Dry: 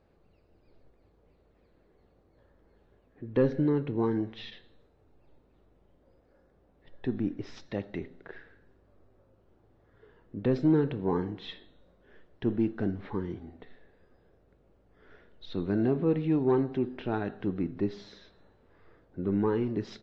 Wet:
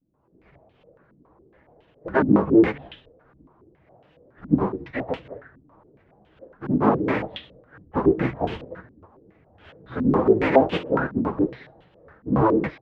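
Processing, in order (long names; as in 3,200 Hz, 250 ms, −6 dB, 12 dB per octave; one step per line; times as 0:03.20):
sub-harmonics by changed cycles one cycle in 3, inverted
high-pass filter 44 Hz 12 dB per octave
mains-hum notches 60/120 Hz
automatic gain control gain up to 13 dB
pitch vibrato 0.38 Hz 63 cents
multi-voice chorus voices 6, 0.59 Hz, delay 11 ms, depth 4.9 ms
time stretch by phase vocoder 0.64×
low-pass on a step sequencer 7.2 Hz 260–3,000 Hz
level −1 dB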